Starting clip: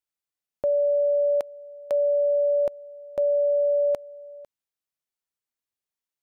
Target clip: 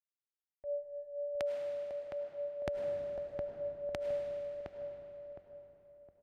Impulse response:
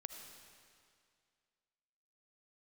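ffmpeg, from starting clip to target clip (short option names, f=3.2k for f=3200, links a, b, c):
-filter_complex "[0:a]highpass=60,aemphasis=mode=reproduction:type=75fm,agate=range=-33dB:threshold=-34dB:ratio=3:detection=peak,equalizer=f=125:t=o:w=1:g=-3,equalizer=f=250:t=o:w=1:g=-6,equalizer=f=500:t=o:w=1:g=-10,equalizer=f=1k:t=o:w=1:g=-10,areverse,acompressor=threshold=-46dB:ratio=12,areverse,tremolo=f=4.1:d=0.89,asplit=2[a][b];[b]adelay=713,lowpass=f=1k:p=1,volume=-3.5dB,asplit=2[c][d];[d]adelay=713,lowpass=f=1k:p=1,volume=0.41,asplit=2[e][f];[f]adelay=713,lowpass=f=1k:p=1,volume=0.41,asplit=2[g][h];[h]adelay=713,lowpass=f=1k:p=1,volume=0.41,asplit=2[i][j];[j]adelay=713,lowpass=f=1k:p=1,volume=0.41[k];[a][c][e][g][i][k]amix=inputs=6:normalize=0[l];[1:a]atrim=start_sample=2205,asetrate=32193,aresample=44100[m];[l][m]afir=irnorm=-1:irlink=0,volume=16dB"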